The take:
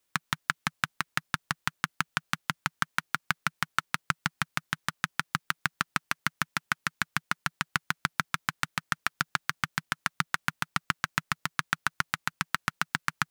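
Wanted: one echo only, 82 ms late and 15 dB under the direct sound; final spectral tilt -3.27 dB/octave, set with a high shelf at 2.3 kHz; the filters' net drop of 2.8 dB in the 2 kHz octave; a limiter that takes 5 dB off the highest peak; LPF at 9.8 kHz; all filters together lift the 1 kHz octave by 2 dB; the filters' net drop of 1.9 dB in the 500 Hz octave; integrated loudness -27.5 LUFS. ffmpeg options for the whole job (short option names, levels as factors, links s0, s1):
-af "lowpass=9800,equalizer=f=500:t=o:g=-6,equalizer=f=1000:t=o:g=7.5,equalizer=f=2000:t=o:g=-4,highshelf=f=2300:g=-6,alimiter=limit=0.251:level=0:latency=1,aecho=1:1:82:0.178,volume=2.66"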